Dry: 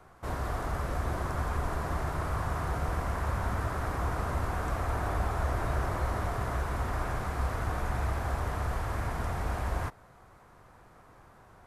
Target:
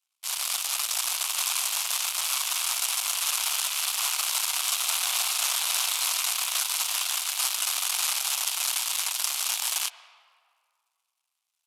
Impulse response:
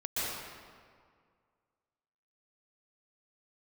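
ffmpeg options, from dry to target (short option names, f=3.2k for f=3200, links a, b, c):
-filter_complex "[0:a]aeval=exprs='0.126*(cos(1*acos(clip(val(0)/0.126,-1,1)))-cos(1*PI/2))+0.02*(cos(2*acos(clip(val(0)/0.126,-1,1)))-cos(2*PI/2))+0.0141*(cos(4*acos(clip(val(0)/0.126,-1,1)))-cos(4*PI/2))+0.00891*(cos(6*acos(clip(val(0)/0.126,-1,1)))-cos(6*PI/2))+0.0178*(cos(7*acos(clip(val(0)/0.126,-1,1)))-cos(7*PI/2))':c=same,highpass=f=880:w=0.5412,highpass=f=880:w=1.3066,aexciter=amount=15.8:drive=3.7:freq=2.7k,asplit=2[a][b];[1:a]atrim=start_sample=2205,lowpass=3.1k[c];[b][c]afir=irnorm=-1:irlink=0,volume=-20dB[d];[a][d]amix=inputs=2:normalize=0"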